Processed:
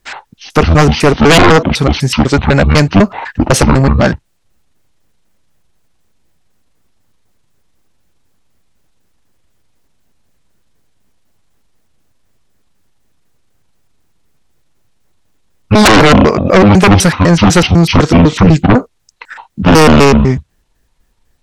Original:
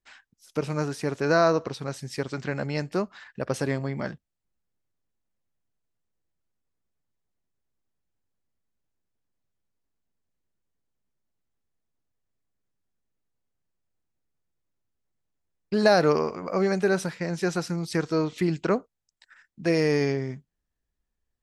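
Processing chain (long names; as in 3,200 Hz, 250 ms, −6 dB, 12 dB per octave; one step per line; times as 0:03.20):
pitch shifter gated in a rhythm −11 semitones, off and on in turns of 125 ms
sine wavefolder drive 15 dB, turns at −7.5 dBFS
level +6 dB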